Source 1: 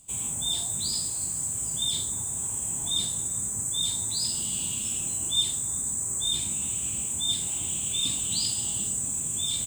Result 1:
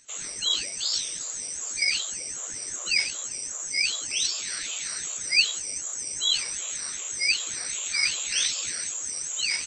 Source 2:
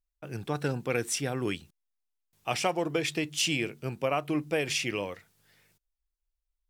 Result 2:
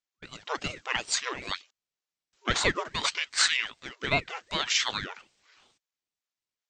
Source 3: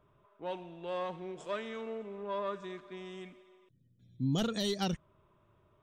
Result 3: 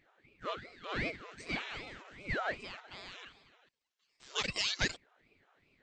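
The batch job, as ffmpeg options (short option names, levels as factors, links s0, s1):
-af "acrusher=bits=7:mode=log:mix=0:aa=0.000001,afftfilt=real='re*between(b*sr/4096,670,7400)':imag='im*between(b*sr/4096,670,7400)':win_size=4096:overlap=0.75,aeval=exprs='val(0)*sin(2*PI*840*n/s+840*0.7/2.6*sin(2*PI*2.6*n/s))':c=same,volume=2.51"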